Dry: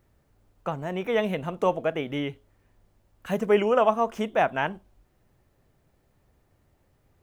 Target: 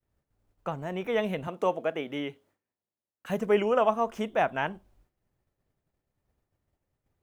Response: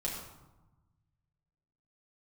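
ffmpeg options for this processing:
-filter_complex "[0:a]asettb=1/sr,asplit=3[link_01][link_02][link_03];[link_01]atrim=end=1.474[link_04];[link_02]atrim=start=1.47:end=3.3,asetpts=PTS-STARTPTS,afade=type=in:duration=0.004:curve=qsin,afade=type=out:start_time=1.826:duration=0.004:curve=qsin,highpass=200[link_05];[link_03]atrim=start=3.296[link_06];[link_04][link_05]acrossfade=duration=0.004:curve1=hsin:curve2=qsin[link_07];[link_07][link_06]acrossfade=duration=0.004:curve1=qsin:curve2=hsin,agate=range=-33dB:threshold=-56dB:ratio=3:detection=peak,volume=-3dB"

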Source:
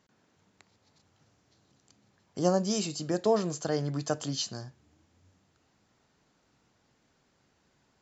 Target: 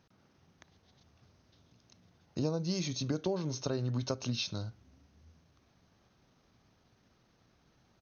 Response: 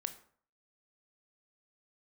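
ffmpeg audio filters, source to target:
-af "asetrate=38170,aresample=44100,atempo=1.15535,acompressor=threshold=-32dB:ratio=4,lowshelf=frequency=190:gain=5.5"

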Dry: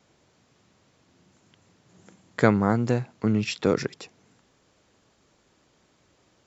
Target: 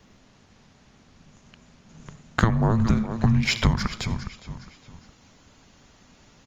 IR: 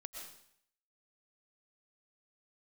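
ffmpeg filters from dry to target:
-filter_complex "[0:a]aecho=1:1:411|822|1233:0.141|0.0551|0.0215,asplit=2[link_01][link_02];[link_02]aeval=exprs='sgn(val(0))*max(abs(val(0))-0.0119,0)':channel_layout=same,volume=-9dB[link_03];[link_01][link_03]amix=inputs=2:normalize=0,afreqshift=-340,asplit=2[link_04][link_05];[1:a]atrim=start_sample=2205,asetrate=79380,aresample=44100[link_06];[link_05][link_06]afir=irnorm=-1:irlink=0,volume=-3.5dB[link_07];[link_04][link_07]amix=inputs=2:normalize=0,acompressor=threshold=-24dB:ratio=10,volume=8dB" -ar 48000 -c:a libopus -b:a 32k

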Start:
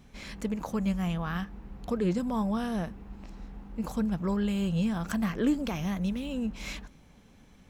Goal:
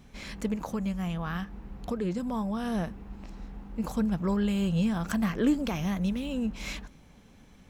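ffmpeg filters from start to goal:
ffmpeg -i in.wav -filter_complex "[0:a]asplit=3[link_01][link_02][link_03];[link_01]afade=type=out:start_time=0.56:duration=0.02[link_04];[link_02]acompressor=threshold=-32dB:ratio=2,afade=type=in:start_time=0.56:duration=0.02,afade=type=out:start_time=2.65:duration=0.02[link_05];[link_03]afade=type=in:start_time=2.65:duration=0.02[link_06];[link_04][link_05][link_06]amix=inputs=3:normalize=0,volume=1.5dB" out.wav

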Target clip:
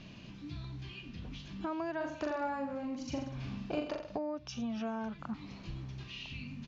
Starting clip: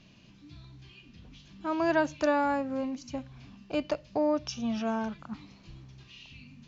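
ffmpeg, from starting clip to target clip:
ffmpeg -i in.wav -filter_complex "[0:a]highshelf=frequency=6400:gain=-11,acompressor=threshold=-43dB:ratio=6,asplit=3[link_01][link_02][link_03];[link_01]afade=type=out:start_time=1.99:duration=0.02[link_04];[link_02]aecho=1:1:40|84|132.4|185.6|244.2:0.631|0.398|0.251|0.158|0.1,afade=type=in:start_time=1.99:duration=0.02,afade=type=out:start_time=4.17:duration=0.02[link_05];[link_03]afade=type=in:start_time=4.17:duration=0.02[link_06];[link_04][link_05][link_06]amix=inputs=3:normalize=0,volume=7dB" out.wav

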